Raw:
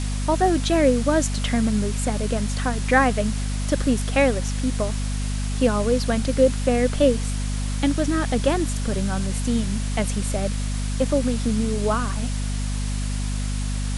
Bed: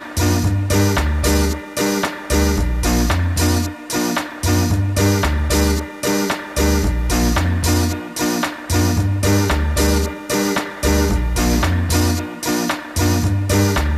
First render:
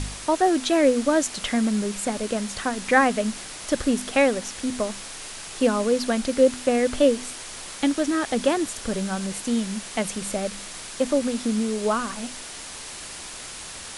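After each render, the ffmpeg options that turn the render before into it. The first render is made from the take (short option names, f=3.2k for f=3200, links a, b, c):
-af "bandreject=f=50:t=h:w=4,bandreject=f=100:t=h:w=4,bandreject=f=150:t=h:w=4,bandreject=f=200:t=h:w=4,bandreject=f=250:t=h:w=4"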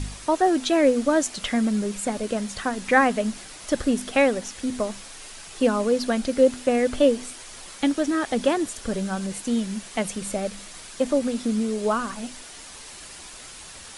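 -af "afftdn=nr=6:nf=-38"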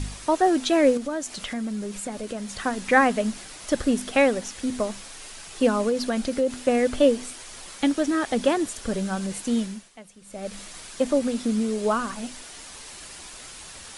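-filter_complex "[0:a]asettb=1/sr,asplit=3[a][b][c];[a]atrim=end=0.974[d];[b]atrim=start=0.97:end=2.6,asetpts=PTS-STARTPTS,afade=t=in:d=0.004:c=qsin,afade=t=out:st=1.626:d=0.004:c=qsin,acompressor=threshold=-32dB:ratio=2:attack=3.2:release=140:knee=1:detection=peak[e];[c]atrim=start=2.596[f];[d][e]acrossfade=d=0.004:c1=hsin:c2=qsin[g];[g][f]acrossfade=d=0.004:c1=qsin:c2=hsin,asettb=1/sr,asplit=3[h][i][j];[h]atrim=end=5.894[k];[i]atrim=start=5.89:end=6.62,asetpts=PTS-STARTPTS,afade=t=in:d=0.004:c=qsin,afade=t=out:st=0.726:d=0.004:c=qsin,acompressor=threshold=-20dB:ratio=3:attack=3.2:release=140:knee=1:detection=peak[l];[j]atrim=start=6.616[m];[k][l]acrossfade=d=0.004:c1=hsin:c2=qsin[n];[n][m]acrossfade=d=0.004:c1=qsin:c2=hsin,asplit=3[o][p][q];[o]atrim=end=10.01,asetpts=PTS-STARTPTS,afade=t=out:st=9.62:d=0.39:c=qua:silence=0.105925[r];[p]atrim=start=10.01:end=10.17,asetpts=PTS-STARTPTS,volume=-19.5dB[s];[q]atrim=start=10.17,asetpts=PTS-STARTPTS,afade=t=in:d=0.39:c=qua:silence=0.105925[t];[r][s][t]concat=n=3:v=0:a=1"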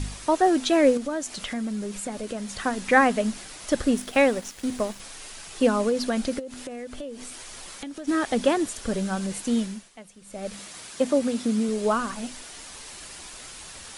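-filter_complex "[0:a]asettb=1/sr,asplit=3[a][b][c];[a]atrim=end=3.944[d];[b]atrim=start=3.94:end=5,asetpts=PTS-STARTPTS,afade=t=in:d=0.004:c=qsin,afade=t=out:st=1.056:d=0.004:c=qsin,aeval=exprs='sgn(val(0))*max(abs(val(0))-0.00631,0)':c=same[e];[c]atrim=start=4.996[f];[d][e]acrossfade=d=0.004:c1=hsin:c2=qsin[g];[g][f]acrossfade=d=0.004:c1=qsin:c2=hsin,asplit=3[h][i][j];[h]afade=t=out:st=6.38:d=0.02[k];[i]acompressor=threshold=-34dB:ratio=6:attack=3.2:release=140:knee=1:detection=peak,afade=t=in:st=6.38:d=0.02,afade=t=out:st=8.07:d=0.02[l];[j]afade=t=in:st=8.07:d=0.02[m];[k][l][m]amix=inputs=3:normalize=0,asettb=1/sr,asplit=3[n][o][p];[n]atrim=end=10.544[q];[o]atrim=start=10.54:end=11.69,asetpts=PTS-STARTPTS,afade=t=in:d=0.004:c=qsin,afade=t=out:st=1.146:d=0.004:c=qsin,highpass=70[r];[p]atrim=start=11.686[s];[q][r]acrossfade=d=0.004:c1=hsin:c2=qsin[t];[t][s]acrossfade=d=0.004:c1=qsin:c2=hsin"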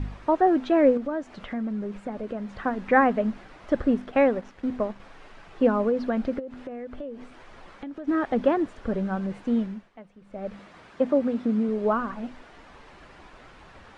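-af "lowpass=1.6k"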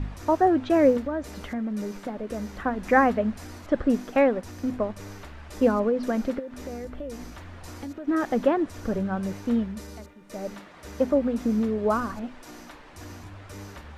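-filter_complex "[1:a]volume=-26.5dB[a];[0:a][a]amix=inputs=2:normalize=0"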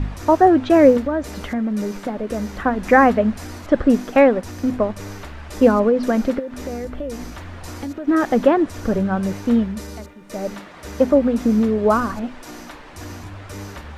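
-af "volume=7.5dB,alimiter=limit=-2dB:level=0:latency=1"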